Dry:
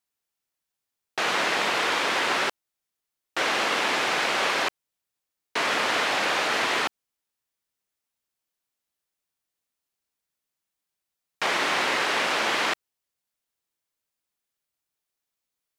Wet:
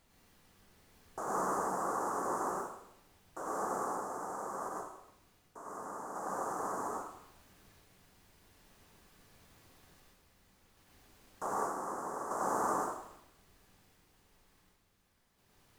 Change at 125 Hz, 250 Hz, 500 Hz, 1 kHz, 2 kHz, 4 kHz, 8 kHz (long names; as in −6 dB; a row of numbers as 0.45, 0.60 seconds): −5.5, −7.0, −8.5, −8.0, −24.0, −34.5, −11.0 decibels